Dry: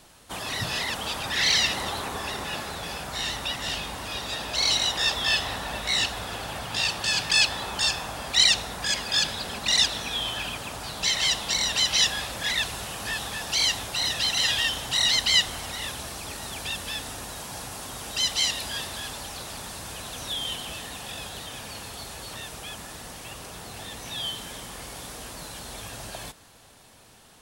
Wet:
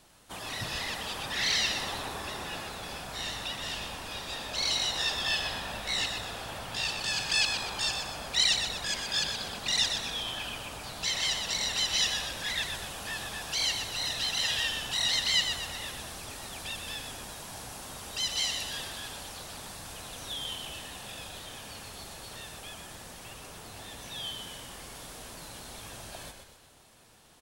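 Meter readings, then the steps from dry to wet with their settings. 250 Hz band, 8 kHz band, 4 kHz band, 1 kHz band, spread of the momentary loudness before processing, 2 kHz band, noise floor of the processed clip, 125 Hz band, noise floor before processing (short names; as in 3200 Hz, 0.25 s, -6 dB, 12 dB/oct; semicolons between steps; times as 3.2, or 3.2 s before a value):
-5.5 dB, -5.5 dB, -5.5 dB, -5.5 dB, 17 LU, -5.5 dB, -49 dBFS, -5.5 dB, -50 dBFS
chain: frequency-shifting echo 0.123 s, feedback 48%, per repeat -62 Hz, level -6.5 dB; crackle 33/s -45 dBFS; gain -6.5 dB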